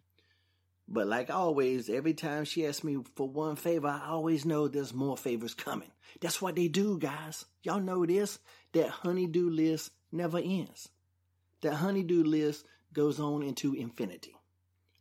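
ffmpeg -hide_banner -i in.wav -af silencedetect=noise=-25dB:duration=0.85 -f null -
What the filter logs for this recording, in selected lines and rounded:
silence_start: 0.00
silence_end: 0.96 | silence_duration: 0.96
silence_start: 10.60
silence_end: 11.64 | silence_duration: 1.05
silence_start: 14.04
silence_end: 15.00 | silence_duration: 0.97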